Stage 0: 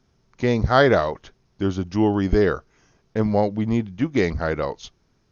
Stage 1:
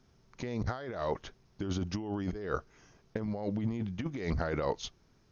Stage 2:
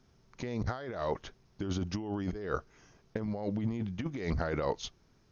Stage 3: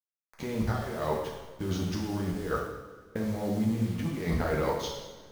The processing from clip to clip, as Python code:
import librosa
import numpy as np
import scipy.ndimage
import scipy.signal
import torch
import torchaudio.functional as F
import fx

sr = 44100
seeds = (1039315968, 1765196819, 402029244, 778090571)

y1 = fx.over_compress(x, sr, threshold_db=-27.0, ratio=-1.0)
y1 = y1 * librosa.db_to_amplitude(-7.5)
y2 = y1
y3 = fx.delta_hold(y2, sr, step_db=-45.5)
y3 = fx.rev_double_slope(y3, sr, seeds[0], early_s=0.98, late_s=3.3, knee_db=-19, drr_db=-2.5)